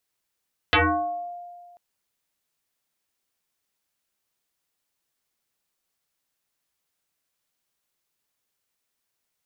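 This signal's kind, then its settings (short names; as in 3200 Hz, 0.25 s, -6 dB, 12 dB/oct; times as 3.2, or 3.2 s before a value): FM tone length 1.04 s, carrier 703 Hz, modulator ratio 0.56, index 8, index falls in 0.69 s exponential, decay 1.81 s, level -14 dB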